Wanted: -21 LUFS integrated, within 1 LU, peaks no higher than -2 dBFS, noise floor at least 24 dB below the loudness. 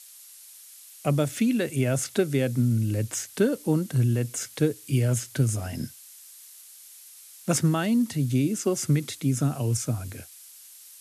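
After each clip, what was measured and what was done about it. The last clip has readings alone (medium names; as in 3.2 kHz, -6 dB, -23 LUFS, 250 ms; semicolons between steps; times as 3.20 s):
noise floor -49 dBFS; noise floor target -50 dBFS; loudness -26.0 LUFS; peak level -10.0 dBFS; loudness target -21.0 LUFS
-> noise reduction 6 dB, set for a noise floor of -49 dBFS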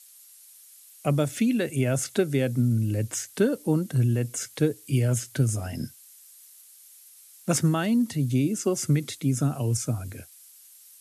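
noise floor -52 dBFS; loudness -26.0 LUFS; peak level -10.0 dBFS; loudness target -21.0 LUFS
-> trim +5 dB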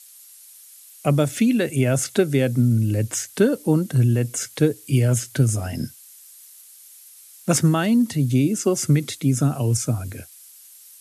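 loudness -21.0 LUFS; peak level -5.0 dBFS; noise floor -47 dBFS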